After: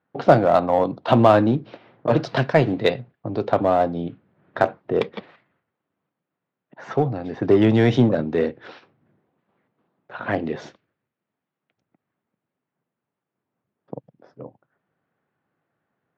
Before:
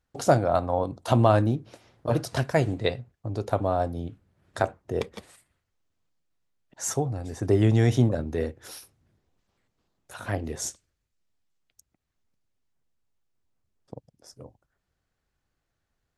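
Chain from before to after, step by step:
low-pass filter 4,200 Hz 24 dB per octave
low-pass that shuts in the quiet parts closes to 1,700 Hz, open at −20.5 dBFS
high-pass filter 140 Hz 24 dB per octave
in parallel at −6.5 dB: hard clipping −23.5 dBFS, distortion −6 dB
on the sum: level +5 dB

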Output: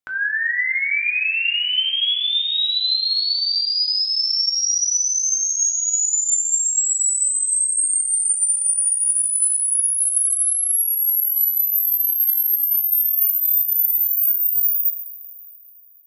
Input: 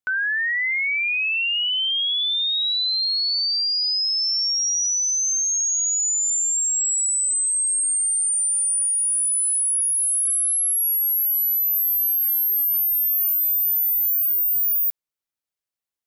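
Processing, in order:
notch filter 1,500 Hz, Q 17
coupled-rooms reverb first 0.56 s, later 3.3 s, from −15 dB, DRR 3 dB

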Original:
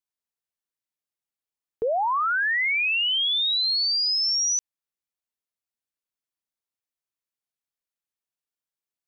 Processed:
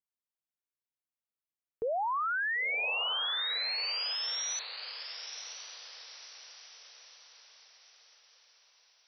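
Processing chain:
parametric band 6,700 Hz −5 dB 1.7 octaves
on a send: feedback delay with all-pass diffusion 999 ms, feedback 46%, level −9.5 dB
on the sum: level −7.5 dB

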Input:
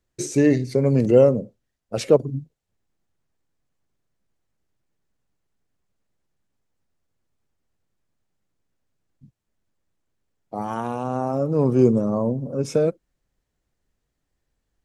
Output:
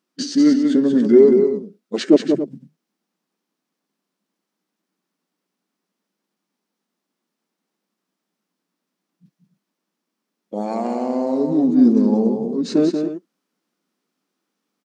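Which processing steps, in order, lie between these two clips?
linear-phase brick-wall high-pass 170 Hz
formants moved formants −5 semitones
multi-tap delay 185/281 ms −6/−12.5 dB
level +4 dB

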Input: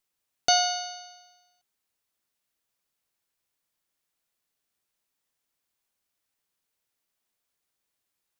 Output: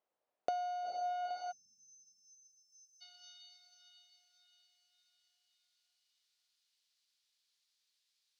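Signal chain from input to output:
on a send: feedback delay with all-pass diffusion 473 ms, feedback 50%, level −9 dB
on the sum: downward compressor 6 to 1, threshold −39 dBFS, peak gain reduction 20 dB
band-pass filter sweep 610 Hz → 4,300 Hz, 0:01.10–0:03.16
time-frequency box erased 0:01.51–0:03.01, 250–4,800 Hz
level +9.5 dB

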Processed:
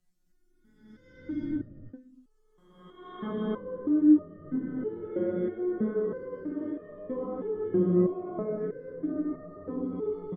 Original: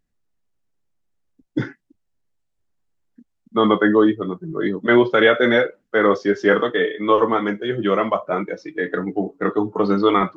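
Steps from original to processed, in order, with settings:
peak hold with a rise ahead of every peak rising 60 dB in 1.29 s
bass and treble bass +5 dB, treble +9 dB
brickwall limiter −11.5 dBFS, peak gain reduction 12 dB
treble cut that deepens with the level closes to 400 Hz, closed at −20.5 dBFS
on a send: loudspeakers that aren't time-aligned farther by 52 metres −9 dB, 91 metres −2 dB
on the sum: frequency shifter −18 Hz
step-sequenced resonator 3.1 Hz 180–610 Hz
level +5.5 dB

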